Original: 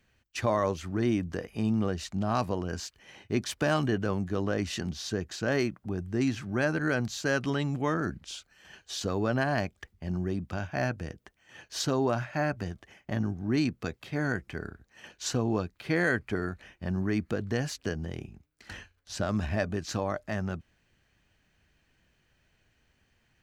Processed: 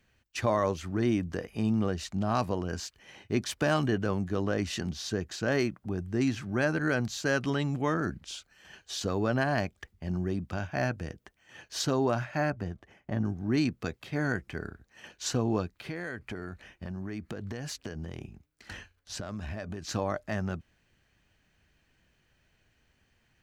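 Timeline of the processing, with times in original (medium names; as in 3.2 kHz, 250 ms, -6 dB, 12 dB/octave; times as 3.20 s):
12.50–13.25 s: treble shelf 2.1 kHz -10 dB
15.77–19.89 s: compression, threshold -33 dBFS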